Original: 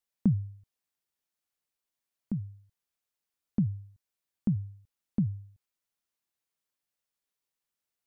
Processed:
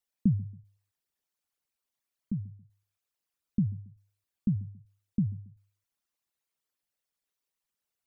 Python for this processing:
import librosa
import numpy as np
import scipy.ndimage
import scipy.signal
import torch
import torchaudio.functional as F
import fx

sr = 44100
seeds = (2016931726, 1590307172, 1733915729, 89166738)

y = fx.envelope_sharpen(x, sr, power=2.0)
y = fx.echo_feedback(y, sr, ms=138, feedback_pct=35, wet_db=-22.0)